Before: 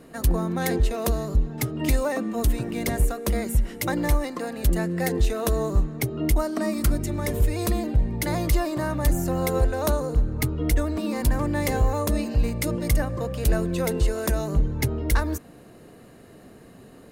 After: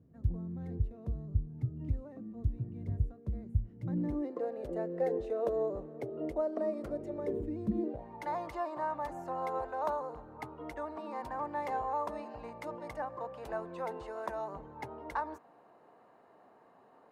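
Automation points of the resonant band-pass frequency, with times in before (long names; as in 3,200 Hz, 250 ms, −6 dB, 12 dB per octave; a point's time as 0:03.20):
resonant band-pass, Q 3.2
0:03.71 100 Hz
0:04.42 530 Hz
0:07.17 530 Hz
0:07.67 180 Hz
0:08.06 900 Hz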